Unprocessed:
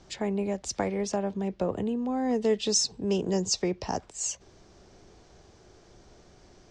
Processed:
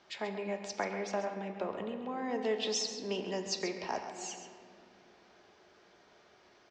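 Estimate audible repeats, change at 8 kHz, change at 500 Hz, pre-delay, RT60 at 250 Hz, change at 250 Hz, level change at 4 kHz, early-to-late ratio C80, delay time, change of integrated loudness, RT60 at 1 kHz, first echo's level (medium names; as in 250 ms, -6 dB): 1, -11.0 dB, -6.5 dB, 3 ms, 4.1 s, -11.0 dB, -5.5 dB, 6.5 dB, 134 ms, -7.5 dB, 2.2 s, -11.0 dB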